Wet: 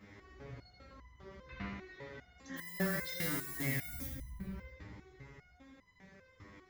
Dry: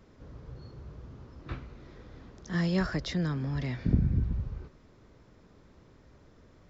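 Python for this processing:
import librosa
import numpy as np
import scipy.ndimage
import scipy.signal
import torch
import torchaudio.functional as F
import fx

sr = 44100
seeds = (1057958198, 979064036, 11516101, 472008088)

p1 = scipy.signal.sosfilt(scipy.signal.butter(2, 45.0, 'highpass', fs=sr, output='sos'), x)
p2 = fx.peak_eq(p1, sr, hz=2000.0, db=11.5, octaves=0.61)
p3 = fx.over_compress(p2, sr, threshold_db=-37.0, ratio=-1.0)
p4 = p2 + (p3 * librosa.db_to_amplitude(0.0))
p5 = fx.chorus_voices(p4, sr, voices=2, hz=0.34, base_ms=14, depth_ms=2.6, mix_pct=50)
p6 = p5 + 10.0 ** (-18.5 / 20.0) * np.pad(p5, (int(972 * sr / 1000.0), 0))[:len(p5)]
p7 = fx.dmg_noise_colour(p6, sr, seeds[0], colour='violet', level_db=-36.0, at=(2.56, 4.05), fade=0.02)
p8 = p7 + fx.echo_feedback(p7, sr, ms=81, feedback_pct=58, wet_db=-5.0, dry=0)
p9 = fx.resonator_held(p8, sr, hz=5.0, low_hz=100.0, high_hz=1000.0)
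y = p9 * librosa.db_to_amplitude(4.0)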